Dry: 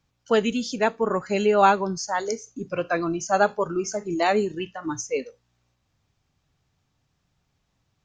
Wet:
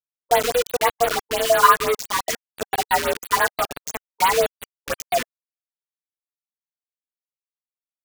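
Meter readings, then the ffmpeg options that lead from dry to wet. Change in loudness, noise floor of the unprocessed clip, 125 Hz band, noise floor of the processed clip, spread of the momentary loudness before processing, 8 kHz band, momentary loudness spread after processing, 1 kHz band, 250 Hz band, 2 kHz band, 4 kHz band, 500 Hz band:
+3.5 dB, -74 dBFS, -6.0 dB, under -85 dBFS, 12 LU, no reading, 15 LU, +4.5 dB, -11.5 dB, +5.5 dB, +8.0 dB, +1.0 dB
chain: -filter_complex "[0:a]equalizer=f=82:t=o:w=0.32:g=12.5,aecho=1:1:4.1:0.76,asplit=2[s0][s1];[s1]acrusher=bits=2:mode=log:mix=0:aa=0.000001,volume=0.422[s2];[s0][s2]amix=inputs=2:normalize=0,flanger=delay=9.7:depth=3:regen=29:speed=0.44:shape=sinusoidal,afreqshift=240,acrusher=bits=3:mix=0:aa=0.000001,afftfilt=real='re*(1-between(b*sr/1024,610*pow(6700/610,0.5+0.5*sin(2*PI*5.9*pts/sr))/1.41,610*pow(6700/610,0.5+0.5*sin(2*PI*5.9*pts/sr))*1.41))':imag='im*(1-between(b*sr/1024,610*pow(6700/610,0.5+0.5*sin(2*PI*5.9*pts/sr))/1.41,610*pow(6700/610,0.5+0.5*sin(2*PI*5.9*pts/sr))*1.41))':win_size=1024:overlap=0.75,volume=1.19"

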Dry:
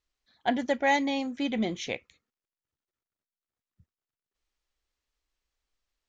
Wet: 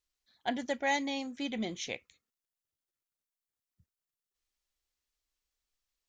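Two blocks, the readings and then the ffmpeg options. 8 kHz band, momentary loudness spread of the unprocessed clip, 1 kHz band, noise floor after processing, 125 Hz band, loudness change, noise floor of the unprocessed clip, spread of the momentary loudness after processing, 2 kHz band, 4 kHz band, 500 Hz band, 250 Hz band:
no reading, 10 LU, -6.5 dB, under -85 dBFS, -7.0 dB, -6.0 dB, under -85 dBFS, 9 LU, -5.0 dB, -3.0 dB, -7.0 dB, -7.0 dB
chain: -af "highshelf=f=4000:g=10,volume=0.447"

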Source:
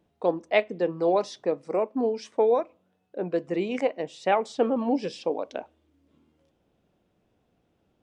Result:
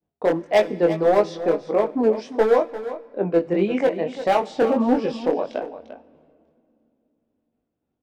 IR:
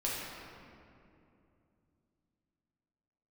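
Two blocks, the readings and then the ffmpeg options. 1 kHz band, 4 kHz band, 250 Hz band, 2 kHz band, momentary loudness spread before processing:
+4.5 dB, +3.0 dB, +6.5 dB, +3.5 dB, 8 LU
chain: -filter_complex "[0:a]aemphasis=mode=reproduction:type=75fm,acontrast=27,agate=range=0.0224:threshold=0.00251:ratio=3:detection=peak,volume=4.47,asoftclip=hard,volume=0.224,flanger=delay=19:depth=5.2:speed=1.6,aecho=1:1:347:0.237,asplit=2[s0][s1];[1:a]atrim=start_sample=2205,highshelf=f=2600:g=11.5[s2];[s1][s2]afir=irnorm=-1:irlink=0,volume=0.0473[s3];[s0][s3]amix=inputs=2:normalize=0,volume=1.5"

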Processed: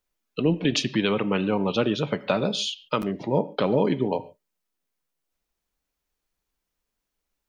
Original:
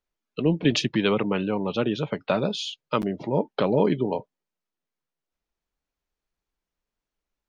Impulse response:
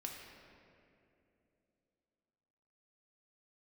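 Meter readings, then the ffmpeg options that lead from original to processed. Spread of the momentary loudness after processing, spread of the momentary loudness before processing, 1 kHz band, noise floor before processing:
5 LU, 7 LU, +0.5 dB, under -85 dBFS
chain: -filter_complex "[0:a]highshelf=f=4600:g=10.5,alimiter=limit=0.237:level=0:latency=1:release=493,asplit=2[s0][s1];[1:a]atrim=start_sample=2205,atrim=end_sample=6615,lowpass=4100[s2];[s1][s2]afir=irnorm=-1:irlink=0,volume=0.531[s3];[s0][s3]amix=inputs=2:normalize=0"

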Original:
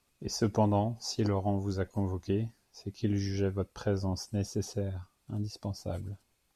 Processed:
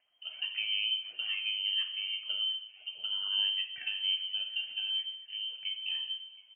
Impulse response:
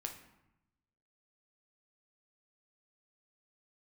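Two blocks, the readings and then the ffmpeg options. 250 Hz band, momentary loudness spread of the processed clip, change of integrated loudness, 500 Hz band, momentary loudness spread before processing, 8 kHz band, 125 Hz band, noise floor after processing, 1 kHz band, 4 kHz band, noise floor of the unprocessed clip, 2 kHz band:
under -40 dB, 8 LU, +1.0 dB, under -35 dB, 12 LU, under -35 dB, under -40 dB, -60 dBFS, under -20 dB, +17.5 dB, -74 dBFS, +11.0 dB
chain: -filter_complex "[0:a]acompressor=threshold=0.0316:ratio=6,aphaser=in_gain=1:out_gain=1:delay=2.5:decay=0.51:speed=1.2:type=triangular,asplit=2[s0][s1];[s1]adelay=722,lowpass=f=2400:p=1,volume=0.1,asplit=2[s2][s3];[s3]adelay=722,lowpass=f=2400:p=1,volume=0.53,asplit=2[s4][s5];[s5]adelay=722,lowpass=f=2400:p=1,volume=0.53,asplit=2[s6][s7];[s7]adelay=722,lowpass=f=2400:p=1,volume=0.53[s8];[s0][s2][s4][s6][s8]amix=inputs=5:normalize=0[s9];[1:a]atrim=start_sample=2205,afade=t=out:st=0.31:d=0.01,atrim=end_sample=14112[s10];[s9][s10]afir=irnorm=-1:irlink=0,lowpass=f=2700:t=q:w=0.5098,lowpass=f=2700:t=q:w=0.6013,lowpass=f=2700:t=q:w=0.9,lowpass=f=2700:t=q:w=2.563,afreqshift=-3200,volume=0.891"

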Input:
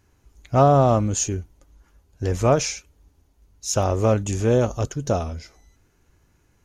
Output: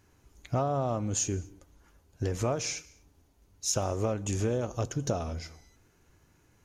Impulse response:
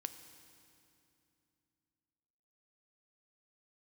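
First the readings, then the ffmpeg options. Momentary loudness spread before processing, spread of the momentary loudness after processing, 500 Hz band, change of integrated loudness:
15 LU, 9 LU, -11.5 dB, -10.5 dB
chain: -filter_complex "[0:a]acompressor=threshold=0.0562:ratio=10,asplit=2[s0][s1];[s1]highpass=f=46:w=0.5412,highpass=f=46:w=1.3066[s2];[1:a]atrim=start_sample=2205,afade=t=out:st=0.3:d=0.01,atrim=end_sample=13671[s3];[s2][s3]afir=irnorm=-1:irlink=0,volume=0.841[s4];[s0][s4]amix=inputs=2:normalize=0,volume=0.596"

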